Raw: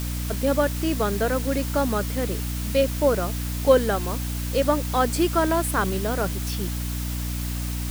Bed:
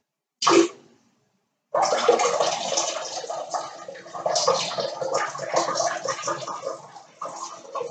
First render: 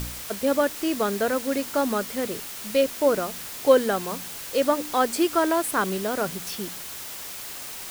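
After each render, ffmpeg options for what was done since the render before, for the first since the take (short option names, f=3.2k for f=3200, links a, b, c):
-af "bandreject=f=60:t=h:w=4,bandreject=f=120:t=h:w=4,bandreject=f=180:t=h:w=4,bandreject=f=240:t=h:w=4,bandreject=f=300:t=h:w=4"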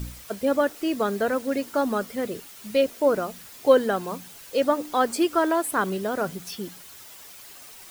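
-af "afftdn=nr=10:nf=-37"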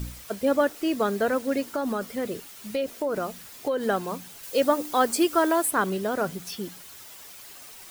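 -filter_complex "[0:a]asettb=1/sr,asplit=3[a][b][c];[a]atrim=end=1.624[d];[b]atrim=start=1.62:end=3.86,asetpts=PTS-STARTPTS,afade=t=in:d=0.004:c=qsin,afade=t=out:st=2.236:d=0.004:c=qsin,acompressor=threshold=-23dB:ratio=6:attack=3.2:release=140:knee=1:detection=peak[e];[c]atrim=start=3.856[f];[d][e]acrossfade=d=0.004:c1=hsin:c2=qsin[g];[g][f]acrossfade=d=0.004:c1=qsin:c2=hsin,asettb=1/sr,asplit=3[h][i][j];[h]atrim=end=4.434[k];[i]atrim=start=4.43:end=5.7,asetpts=PTS-STARTPTS,afade=t=in:d=0.004:c=qsin,afade=t=out:st=1.266:d=0.004:c=qsin,highshelf=f=6.1k:g=6.5[l];[j]atrim=start=5.696[m];[k][l]acrossfade=d=0.004:c1=hsin:c2=qsin[n];[n][m]acrossfade=d=0.004:c1=qsin:c2=hsin"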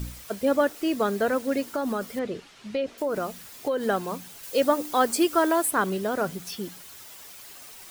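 -filter_complex "[0:a]asettb=1/sr,asplit=3[a][b][c];[a]atrim=end=2.194[d];[b]atrim=start=2.19:end=2.98,asetpts=PTS-STARTPTS,afade=t=in:d=0.004:c=qsin,afade=t=out:st=0.786:d=0.004:c=qsin,lowpass=4.4k[e];[c]atrim=start=2.976[f];[d][e]acrossfade=d=0.004:c1=hsin:c2=qsin[g];[g][f]acrossfade=d=0.004:c1=qsin:c2=hsin"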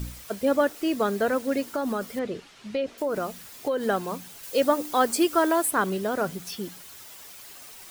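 -af anull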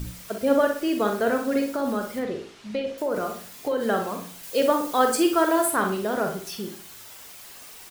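-filter_complex "[0:a]asplit=2[a][b];[b]adelay=43,volume=-7.5dB[c];[a][c]amix=inputs=2:normalize=0,asplit=2[d][e];[e]adelay=61,lowpass=f=4.1k:p=1,volume=-7dB,asplit=2[f][g];[g]adelay=61,lowpass=f=4.1k:p=1,volume=0.39,asplit=2[h][i];[i]adelay=61,lowpass=f=4.1k:p=1,volume=0.39,asplit=2[j][k];[k]adelay=61,lowpass=f=4.1k:p=1,volume=0.39,asplit=2[l][m];[m]adelay=61,lowpass=f=4.1k:p=1,volume=0.39[n];[d][f][h][j][l][n]amix=inputs=6:normalize=0"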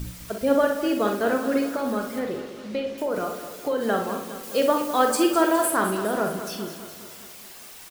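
-af "aecho=1:1:206|412|618|824|1030|1236|1442:0.266|0.157|0.0926|0.0546|0.0322|0.019|0.0112"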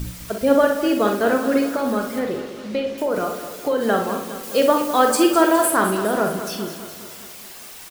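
-af "volume=4.5dB,alimiter=limit=-3dB:level=0:latency=1"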